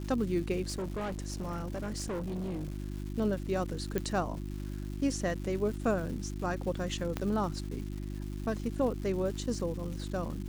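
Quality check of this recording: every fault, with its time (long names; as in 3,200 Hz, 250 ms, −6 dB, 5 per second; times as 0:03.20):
surface crackle 410 per second −41 dBFS
mains hum 50 Hz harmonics 7 −38 dBFS
0:00.65–0:02.76: clipping −32 dBFS
0:03.98: click −18 dBFS
0:07.17: click −18 dBFS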